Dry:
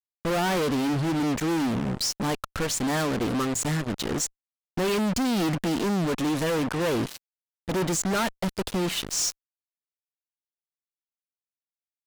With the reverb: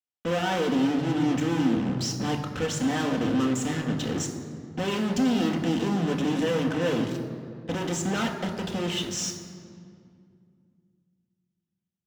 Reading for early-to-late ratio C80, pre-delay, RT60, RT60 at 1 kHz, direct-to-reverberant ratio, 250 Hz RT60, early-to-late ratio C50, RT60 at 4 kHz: 8.5 dB, 3 ms, 2.2 s, 2.1 s, 2.0 dB, 3.2 s, 7.5 dB, 1.4 s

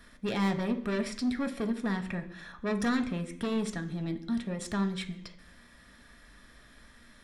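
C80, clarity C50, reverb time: 16.0 dB, 13.0 dB, 0.70 s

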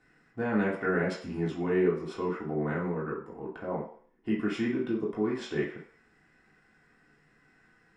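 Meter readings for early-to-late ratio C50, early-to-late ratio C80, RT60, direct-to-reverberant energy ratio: 6.0 dB, 11.0 dB, 0.50 s, −6.0 dB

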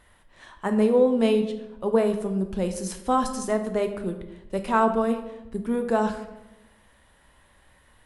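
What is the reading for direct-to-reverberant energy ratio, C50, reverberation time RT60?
6.5 dB, 9.5 dB, 1.0 s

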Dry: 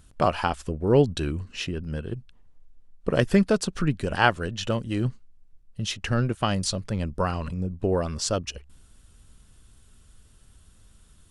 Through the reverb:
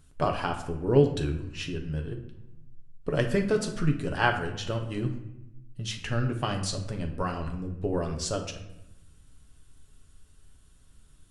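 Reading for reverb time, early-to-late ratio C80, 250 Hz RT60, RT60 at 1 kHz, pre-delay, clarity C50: 0.90 s, 11.5 dB, 1.3 s, 0.85 s, 7 ms, 8.5 dB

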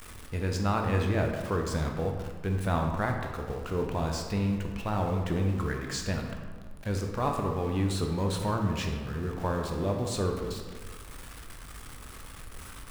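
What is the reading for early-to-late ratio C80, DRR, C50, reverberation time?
6.0 dB, 2.0 dB, 4.5 dB, 1.5 s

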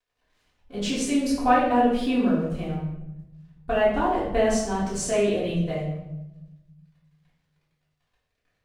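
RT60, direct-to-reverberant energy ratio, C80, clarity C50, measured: 0.95 s, −9.5 dB, 5.5 dB, 2.0 dB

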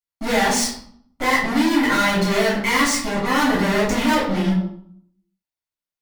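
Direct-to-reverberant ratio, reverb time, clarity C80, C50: −8.0 dB, 0.60 s, 8.0 dB, 4.0 dB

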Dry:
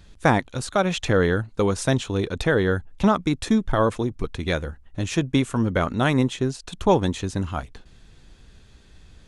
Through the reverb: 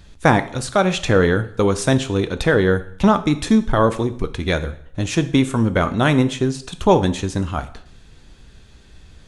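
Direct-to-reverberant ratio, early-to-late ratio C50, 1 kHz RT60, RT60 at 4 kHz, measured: 10.0 dB, 15.0 dB, 0.65 s, 0.55 s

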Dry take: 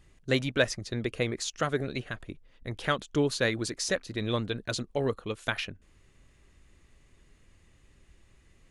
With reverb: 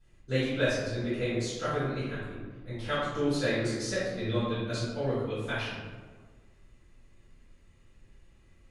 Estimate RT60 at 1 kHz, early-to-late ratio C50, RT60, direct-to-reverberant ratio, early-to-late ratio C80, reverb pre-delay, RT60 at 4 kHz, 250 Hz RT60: 1.5 s, −1.5 dB, 1.5 s, −14.0 dB, 2.0 dB, 3 ms, 0.75 s, 1.7 s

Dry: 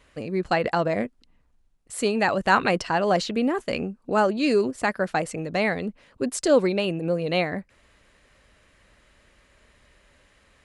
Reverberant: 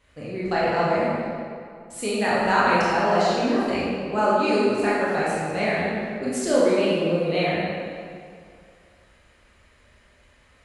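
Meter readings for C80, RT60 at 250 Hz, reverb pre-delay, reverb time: −1.0 dB, 2.2 s, 17 ms, 2.3 s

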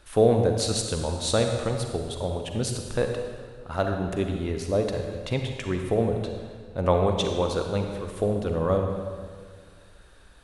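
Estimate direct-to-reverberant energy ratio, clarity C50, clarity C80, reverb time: 3.5 dB, 4.0 dB, 5.5 dB, 1.8 s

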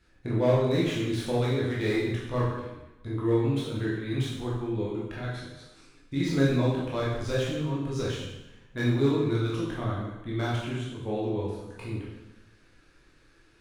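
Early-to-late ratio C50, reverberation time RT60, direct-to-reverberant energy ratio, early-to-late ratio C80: 1.0 dB, 1.0 s, −6.5 dB, 3.5 dB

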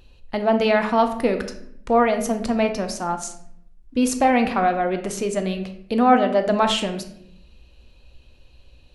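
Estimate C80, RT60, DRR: 13.0 dB, 0.65 s, 6.5 dB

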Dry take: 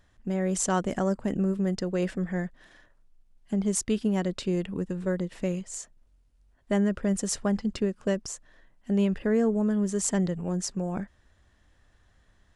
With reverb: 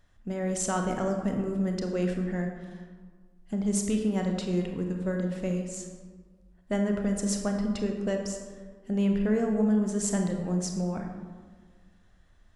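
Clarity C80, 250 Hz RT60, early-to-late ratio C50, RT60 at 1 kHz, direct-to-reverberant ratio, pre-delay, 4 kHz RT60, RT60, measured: 6.5 dB, 1.8 s, 4.5 dB, 1.6 s, 3.0 dB, 24 ms, 0.80 s, 1.6 s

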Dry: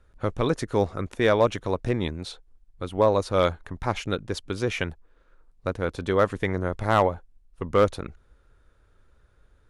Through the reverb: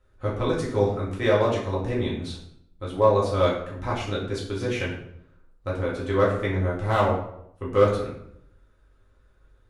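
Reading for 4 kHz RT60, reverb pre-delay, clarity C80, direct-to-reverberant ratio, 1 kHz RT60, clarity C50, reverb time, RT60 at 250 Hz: 0.50 s, 3 ms, 8.0 dB, −6.0 dB, 0.70 s, 4.5 dB, 0.75 s, 0.80 s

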